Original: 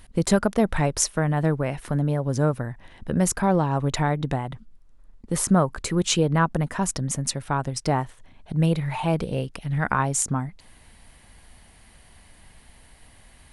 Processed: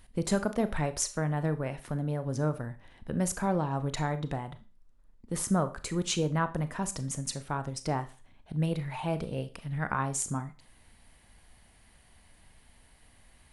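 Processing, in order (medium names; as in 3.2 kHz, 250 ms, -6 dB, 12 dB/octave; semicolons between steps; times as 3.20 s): Schroeder reverb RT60 0.34 s, combs from 26 ms, DRR 11 dB; trim -8 dB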